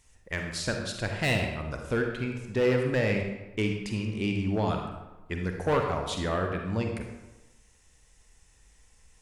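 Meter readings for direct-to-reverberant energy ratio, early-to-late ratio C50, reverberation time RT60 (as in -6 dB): 2.5 dB, 3.5 dB, 1.1 s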